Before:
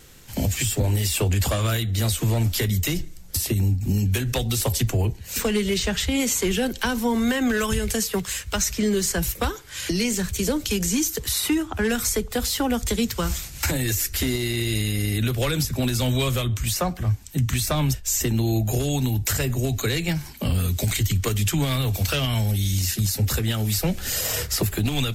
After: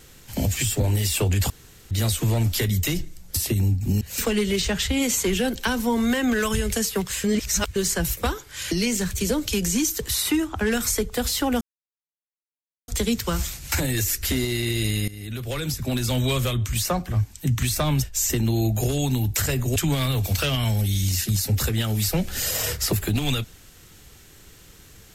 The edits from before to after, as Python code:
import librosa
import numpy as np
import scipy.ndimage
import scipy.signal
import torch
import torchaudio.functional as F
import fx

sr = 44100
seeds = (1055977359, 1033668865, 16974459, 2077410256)

y = fx.edit(x, sr, fx.room_tone_fill(start_s=1.5, length_s=0.41),
    fx.cut(start_s=4.01, length_s=1.18),
    fx.reverse_span(start_s=8.42, length_s=0.52),
    fx.insert_silence(at_s=12.79, length_s=1.27),
    fx.fade_in_from(start_s=14.99, length_s=1.48, curve='qsin', floor_db=-17.5),
    fx.cut(start_s=19.67, length_s=1.79), tone=tone)